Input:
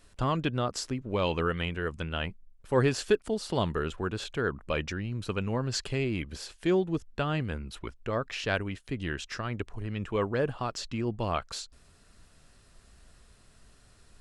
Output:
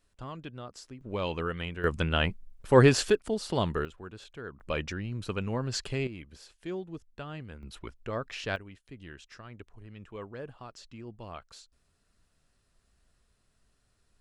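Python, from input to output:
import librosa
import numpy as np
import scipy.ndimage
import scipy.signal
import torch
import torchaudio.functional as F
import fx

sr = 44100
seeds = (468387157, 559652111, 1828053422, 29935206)

y = fx.gain(x, sr, db=fx.steps((0.0, -13.0), (1.01, -4.0), (1.84, 6.0), (3.1, 0.0), (3.85, -12.0), (4.6, -1.5), (6.07, -11.0), (7.63, -3.5), (8.56, -13.0)))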